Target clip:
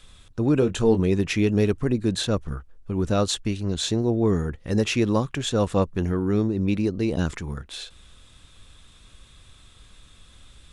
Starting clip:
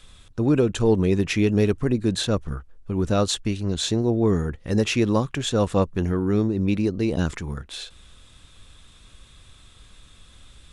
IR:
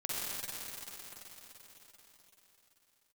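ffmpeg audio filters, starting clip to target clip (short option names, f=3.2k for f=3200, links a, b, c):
-filter_complex "[0:a]asettb=1/sr,asplit=3[a][b][c];[a]atrim=end=0.594[d];[b]atrim=start=0.59:end=1,asetpts=PTS-STARTPTS,afade=t=in:d=0.004:c=qsin,afade=t=out:st=0.406:d=0.004:c=qsin,asplit=2[e][f];[f]adelay=22,volume=-8.5dB[g];[e][g]amix=inputs=2:normalize=0,atrim=end_sample=18081[h];[c]atrim=start=0.996[i];[d][h]acrossfade=d=0.004:c1=hsin:c2=qsin[j];[j][i]acrossfade=d=0.004:c1=qsin:c2=hsin,volume=-1dB"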